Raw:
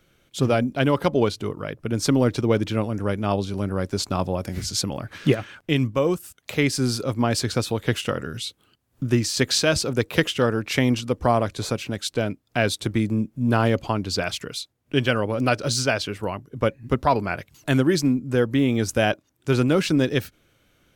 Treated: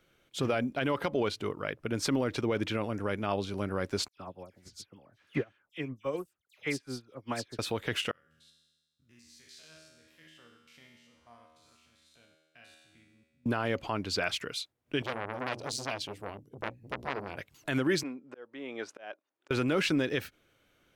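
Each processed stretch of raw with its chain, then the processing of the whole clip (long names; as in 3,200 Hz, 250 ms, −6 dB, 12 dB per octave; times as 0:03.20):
0:04.08–0:07.59: all-pass dispersion lows, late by 90 ms, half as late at 2,400 Hz + expander for the loud parts 2.5 to 1, over −29 dBFS
0:08.11–0:13.46: spectrum averaged block by block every 100 ms + guitar amp tone stack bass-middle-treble 5-5-5 + tuned comb filter 79 Hz, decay 1.3 s, mix 90%
0:15.02–0:17.37: parametric band 1,400 Hz −14.5 dB 1.7 octaves + mains-hum notches 60/120/180/240/300 Hz + saturating transformer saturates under 2,000 Hz
0:18.03–0:19.51: volume swells 514 ms + high-pass filter 500 Hz + head-to-tape spacing loss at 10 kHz 21 dB
whole clip: bass and treble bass −6 dB, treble −4 dB; brickwall limiter −15 dBFS; dynamic equaliser 2,100 Hz, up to +5 dB, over −42 dBFS, Q 0.86; level −4.5 dB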